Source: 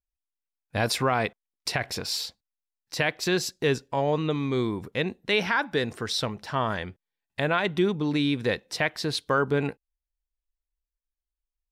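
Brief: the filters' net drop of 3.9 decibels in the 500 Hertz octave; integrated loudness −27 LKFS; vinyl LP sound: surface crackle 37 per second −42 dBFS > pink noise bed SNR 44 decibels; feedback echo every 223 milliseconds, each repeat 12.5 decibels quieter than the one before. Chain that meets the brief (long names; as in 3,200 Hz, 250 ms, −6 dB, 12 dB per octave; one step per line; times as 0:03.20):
parametric band 500 Hz −5 dB
repeating echo 223 ms, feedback 24%, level −12.5 dB
surface crackle 37 per second −42 dBFS
pink noise bed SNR 44 dB
level +1.5 dB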